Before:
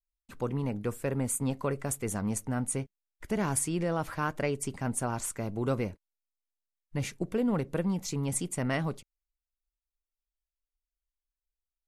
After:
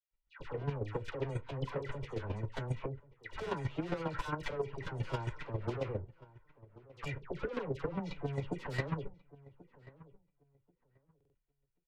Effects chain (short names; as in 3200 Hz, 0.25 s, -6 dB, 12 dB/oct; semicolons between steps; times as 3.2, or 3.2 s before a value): LPF 2900 Hz 24 dB/oct; comb 2.1 ms, depth 82%; in parallel at 0 dB: limiter -26.5 dBFS, peak gain reduction 10.5 dB; on the sum: soft clip -30 dBFS, distortion -7 dB; dispersion lows, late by 0.112 s, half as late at 1200 Hz; chopper 7.4 Hz, depth 65%, duty 15%; flange 0.24 Hz, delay 6.7 ms, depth 1.5 ms, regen -57%; on a send: darkening echo 1.085 s, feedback 19%, low-pass 1500 Hz, level -19.5 dB; on the sum: stuck buffer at 11.16, samples 2048, times 3; gain +5 dB